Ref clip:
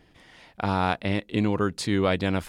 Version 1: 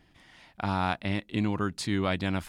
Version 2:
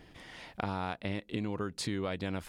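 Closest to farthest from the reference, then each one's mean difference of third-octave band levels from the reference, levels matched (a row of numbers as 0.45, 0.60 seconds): 1, 2; 1.0, 4.0 decibels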